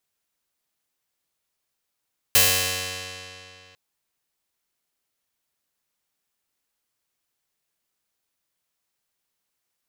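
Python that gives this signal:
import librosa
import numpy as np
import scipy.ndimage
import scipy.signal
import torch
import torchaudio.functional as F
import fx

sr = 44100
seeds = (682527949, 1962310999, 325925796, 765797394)

y = fx.pluck(sr, length_s=1.4, note=42, decay_s=2.74, pick=0.29, brightness='bright')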